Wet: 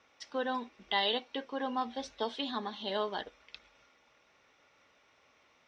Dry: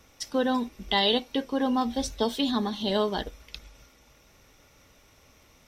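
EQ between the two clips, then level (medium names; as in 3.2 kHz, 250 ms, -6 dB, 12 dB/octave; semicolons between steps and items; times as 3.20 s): high-pass 1.1 kHz 6 dB/octave; low-pass 2.8 kHz 6 dB/octave; distance through air 120 m; 0.0 dB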